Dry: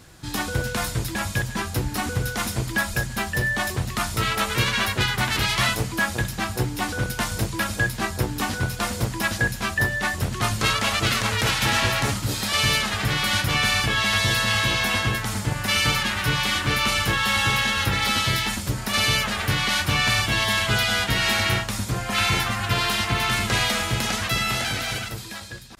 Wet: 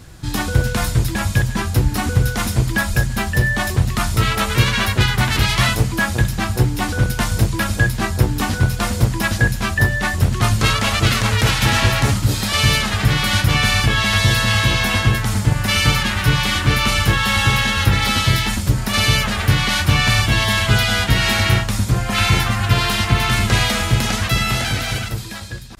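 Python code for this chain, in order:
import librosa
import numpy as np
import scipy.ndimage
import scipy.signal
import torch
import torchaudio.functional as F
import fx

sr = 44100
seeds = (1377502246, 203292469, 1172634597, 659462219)

y = fx.low_shelf(x, sr, hz=160.0, db=10.0)
y = F.gain(torch.from_numpy(y), 3.5).numpy()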